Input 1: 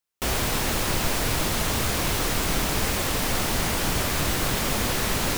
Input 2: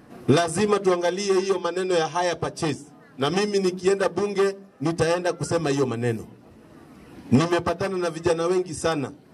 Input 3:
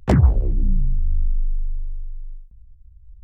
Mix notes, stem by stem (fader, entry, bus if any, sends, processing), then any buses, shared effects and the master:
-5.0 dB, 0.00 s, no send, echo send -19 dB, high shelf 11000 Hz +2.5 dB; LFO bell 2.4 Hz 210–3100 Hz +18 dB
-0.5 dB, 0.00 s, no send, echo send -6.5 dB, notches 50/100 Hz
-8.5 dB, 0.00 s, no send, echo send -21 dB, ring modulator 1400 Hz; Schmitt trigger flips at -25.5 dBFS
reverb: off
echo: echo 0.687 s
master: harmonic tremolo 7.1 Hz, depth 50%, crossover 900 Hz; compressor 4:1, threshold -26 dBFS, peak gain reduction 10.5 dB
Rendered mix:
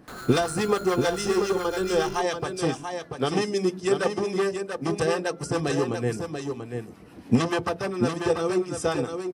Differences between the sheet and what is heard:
stem 1: muted; stem 3 -8.5 dB -> -16.0 dB; master: missing compressor 4:1, threshold -26 dBFS, peak gain reduction 10.5 dB

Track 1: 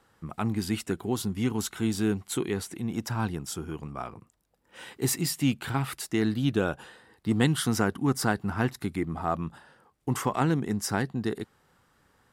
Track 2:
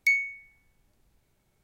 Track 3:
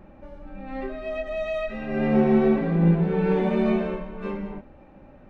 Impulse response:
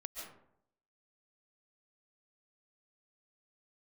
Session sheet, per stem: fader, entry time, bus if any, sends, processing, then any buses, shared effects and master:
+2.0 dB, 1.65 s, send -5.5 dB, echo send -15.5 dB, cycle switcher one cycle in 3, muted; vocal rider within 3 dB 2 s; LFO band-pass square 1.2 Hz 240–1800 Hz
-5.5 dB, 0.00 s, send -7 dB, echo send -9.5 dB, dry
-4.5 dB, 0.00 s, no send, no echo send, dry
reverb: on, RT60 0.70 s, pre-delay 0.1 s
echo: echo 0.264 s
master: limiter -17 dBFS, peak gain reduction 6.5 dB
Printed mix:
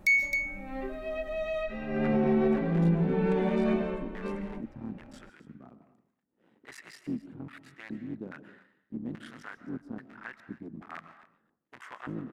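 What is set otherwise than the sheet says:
stem 1 +2.0 dB -> -7.0 dB; stem 2 -5.5 dB -> +1.5 dB

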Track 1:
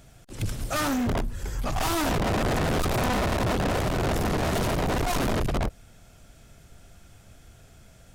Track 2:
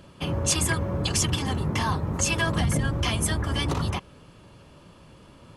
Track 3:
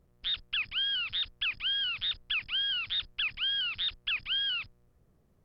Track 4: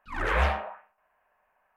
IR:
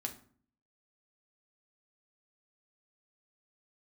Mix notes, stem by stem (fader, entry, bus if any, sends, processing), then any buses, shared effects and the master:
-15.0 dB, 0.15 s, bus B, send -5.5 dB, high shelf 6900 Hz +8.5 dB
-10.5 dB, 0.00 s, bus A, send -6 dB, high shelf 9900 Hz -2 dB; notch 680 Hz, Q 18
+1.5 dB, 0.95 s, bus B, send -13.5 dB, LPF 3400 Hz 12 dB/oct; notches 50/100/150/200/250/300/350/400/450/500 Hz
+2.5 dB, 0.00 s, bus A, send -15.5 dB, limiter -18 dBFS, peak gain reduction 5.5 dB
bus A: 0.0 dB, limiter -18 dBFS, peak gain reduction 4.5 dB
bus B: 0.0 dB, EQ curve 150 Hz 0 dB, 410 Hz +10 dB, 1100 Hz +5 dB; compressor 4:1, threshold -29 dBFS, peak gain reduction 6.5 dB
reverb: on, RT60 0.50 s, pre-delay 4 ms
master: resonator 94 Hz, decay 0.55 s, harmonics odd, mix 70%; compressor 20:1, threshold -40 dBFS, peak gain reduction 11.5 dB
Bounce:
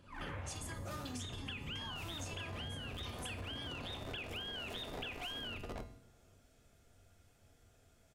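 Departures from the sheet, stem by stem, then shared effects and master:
stem 1: missing high shelf 6900 Hz +8.5 dB; stem 4 +2.5 dB -> -7.5 dB; reverb return +8.5 dB

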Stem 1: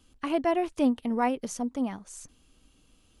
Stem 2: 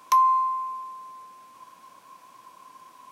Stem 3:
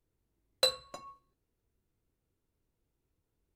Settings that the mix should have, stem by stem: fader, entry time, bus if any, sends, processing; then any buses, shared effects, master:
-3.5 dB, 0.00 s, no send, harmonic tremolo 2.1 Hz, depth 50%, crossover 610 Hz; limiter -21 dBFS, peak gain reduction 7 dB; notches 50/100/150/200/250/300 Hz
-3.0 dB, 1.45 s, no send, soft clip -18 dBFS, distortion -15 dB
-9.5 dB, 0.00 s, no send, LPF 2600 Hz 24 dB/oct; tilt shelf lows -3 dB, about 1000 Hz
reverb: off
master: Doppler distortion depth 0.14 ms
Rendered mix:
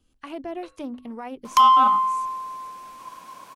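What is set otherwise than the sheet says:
stem 2 -3.0 dB -> +8.0 dB; stem 3 -9.5 dB -> -15.5 dB

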